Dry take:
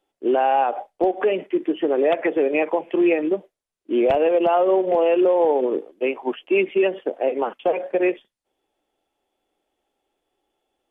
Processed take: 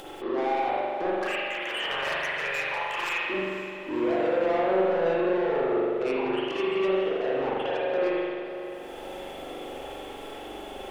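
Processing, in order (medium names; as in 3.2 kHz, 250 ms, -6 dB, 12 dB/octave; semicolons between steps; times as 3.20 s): one-sided wavefolder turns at -13 dBFS; 1.13–3.30 s: high-pass 1.1 kHz 24 dB/octave; upward compressor, threshold -22 dBFS; peak limiter -16.5 dBFS, peak gain reduction 8 dB; compression 4:1, threshold -25 dBFS, peak gain reduction 5.5 dB; saturation -30.5 dBFS, distortion -10 dB; echo that smears into a reverb 516 ms, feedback 54%, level -13 dB; reverberation RT60 1.8 s, pre-delay 42 ms, DRR -6.5 dB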